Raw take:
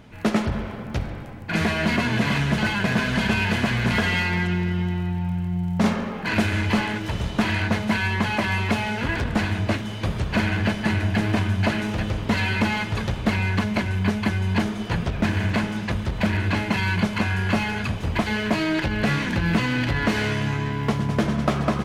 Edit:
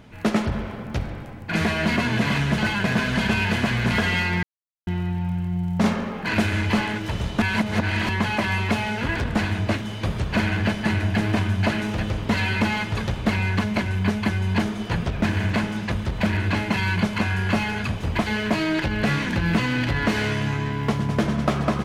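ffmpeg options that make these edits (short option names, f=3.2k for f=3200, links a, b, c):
-filter_complex "[0:a]asplit=5[a][b][c][d][e];[a]atrim=end=4.43,asetpts=PTS-STARTPTS,afade=t=out:st=4.426:d=0.004:c=hsin[f];[b]atrim=start=4.43:end=4.87,asetpts=PTS-STARTPTS,volume=0[g];[c]atrim=start=4.87:end=7.422,asetpts=PTS-STARTPTS,afade=t=in:d=0.004:c=hsin[h];[d]atrim=start=7.418:end=8.092,asetpts=PTS-STARTPTS,areverse[i];[e]atrim=start=8.088[j];[f][g][h]concat=n=3:v=0:a=1[k];[k][i]acrossfade=d=0.004:c1=hsin:c2=hsin[l];[l][j]acrossfade=d=0.004:c1=hsin:c2=hsin"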